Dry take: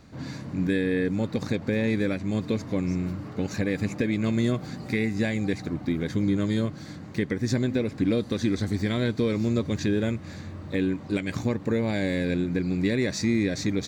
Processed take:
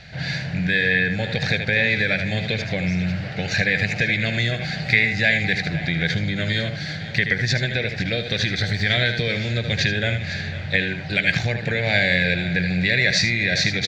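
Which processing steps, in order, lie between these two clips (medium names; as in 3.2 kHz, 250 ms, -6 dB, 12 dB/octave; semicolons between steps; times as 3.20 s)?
delay 77 ms -9 dB; compression, threshold -23 dBFS, peak gain reduction 6 dB; FFT filter 110 Hz 0 dB, 160 Hz +5 dB, 260 Hz -17 dB, 720 Hz +6 dB, 1.1 kHz -13 dB, 1.6 kHz +12 dB, 2.4 kHz +12 dB, 4.4 kHz +10 dB, 9.3 kHz -11 dB; on a send: delay 504 ms -15 dB; on the sum: trim +6.5 dB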